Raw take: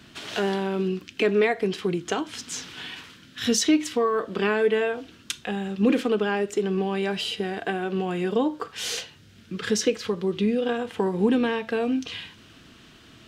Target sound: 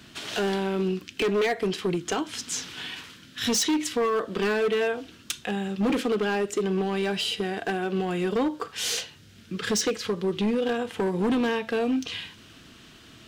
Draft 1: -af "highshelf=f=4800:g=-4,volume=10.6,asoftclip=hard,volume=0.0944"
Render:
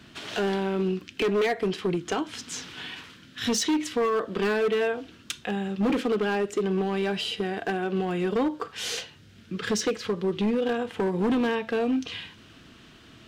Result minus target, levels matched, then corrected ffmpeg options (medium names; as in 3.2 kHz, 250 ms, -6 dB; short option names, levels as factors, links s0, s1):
8 kHz band -4.0 dB
-af "highshelf=f=4800:g=4.5,volume=10.6,asoftclip=hard,volume=0.0944"